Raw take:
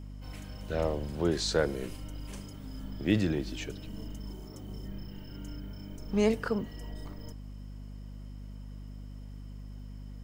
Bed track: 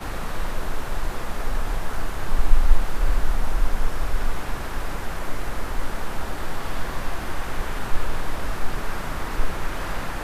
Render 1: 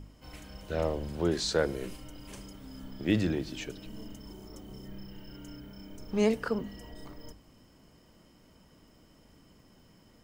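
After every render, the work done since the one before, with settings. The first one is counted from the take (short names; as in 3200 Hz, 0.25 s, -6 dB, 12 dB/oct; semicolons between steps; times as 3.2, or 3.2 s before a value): de-hum 50 Hz, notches 5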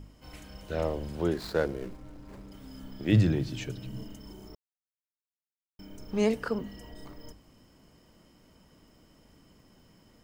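1.33–2.52 median filter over 15 samples; 3.12–4.04 bell 120 Hz +14.5 dB; 4.55–5.79 mute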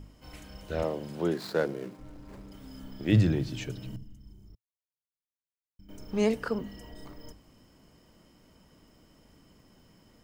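0.83–1.99 HPF 120 Hz 24 dB/oct; 3.96–5.89 EQ curve 110 Hz 0 dB, 570 Hz -23 dB, 5500 Hz -15 dB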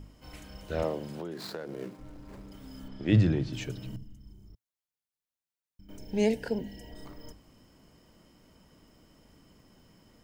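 1.09–1.79 compressor 16:1, threshold -33 dBFS; 2.88–3.53 air absorption 69 m; 5.98–6.92 Butterworth band-stop 1200 Hz, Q 1.8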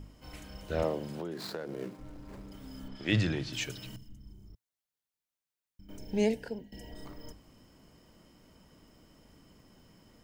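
2.95–4.09 tilt shelf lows -7 dB, about 820 Hz; 6.11–6.72 fade out linear, to -17 dB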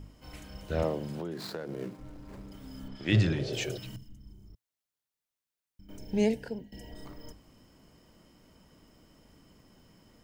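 3.14–3.74 spectral repair 350–820 Hz before; dynamic EQ 110 Hz, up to +5 dB, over -49 dBFS, Q 0.74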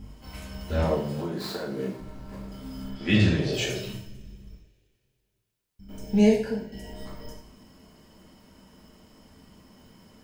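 two-slope reverb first 0.52 s, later 2.6 s, from -27 dB, DRR -5 dB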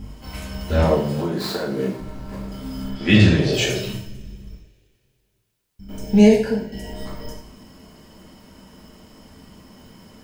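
gain +7.5 dB; limiter -2 dBFS, peak gain reduction 2 dB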